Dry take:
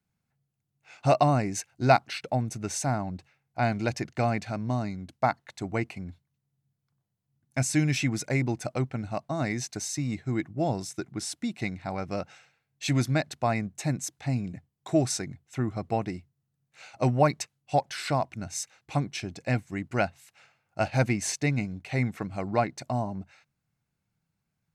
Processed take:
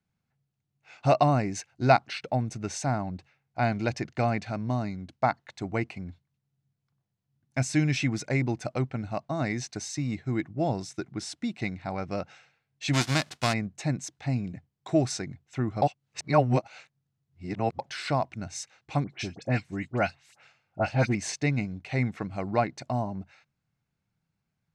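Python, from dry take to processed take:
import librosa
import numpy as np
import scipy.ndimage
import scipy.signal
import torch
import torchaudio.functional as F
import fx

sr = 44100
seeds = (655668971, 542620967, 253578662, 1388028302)

y = fx.envelope_flatten(x, sr, power=0.3, at=(12.93, 13.52), fade=0.02)
y = fx.dispersion(y, sr, late='highs', ms=65.0, hz=2100.0, at=(19.04, 21.15))
y = fx.edit(y, sr, fx.reverse_span(start_s=15.82, length_s=1.97), tone=tone)
y = scipy.signal.sosfilt(scipy.signal.butter(2, 6100.0, 'lowpass', fs=sr, output='sos'), y)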